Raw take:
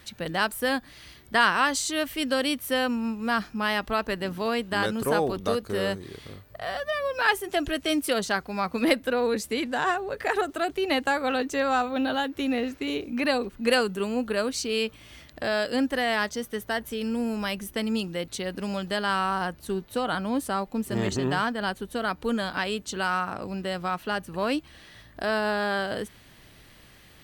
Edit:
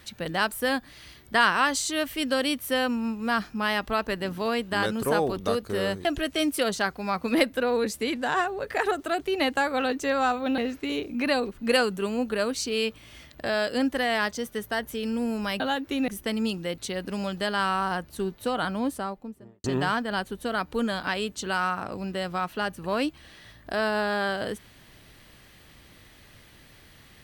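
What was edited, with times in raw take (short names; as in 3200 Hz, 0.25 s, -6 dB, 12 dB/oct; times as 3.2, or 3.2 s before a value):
6.05–7.55 cut
12.08–12.56 move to 17.58
20.2–21.14 studio fade out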